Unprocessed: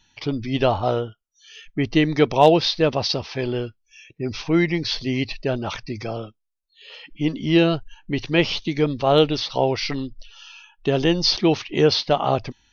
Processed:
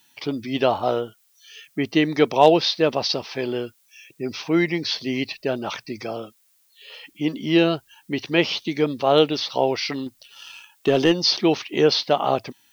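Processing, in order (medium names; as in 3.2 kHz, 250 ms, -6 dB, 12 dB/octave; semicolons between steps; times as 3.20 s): high-pass 200 Hz 12 dB/octave; 10.06–11.12 s: waveshaping leveller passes 1; added noise blue -62 dBFS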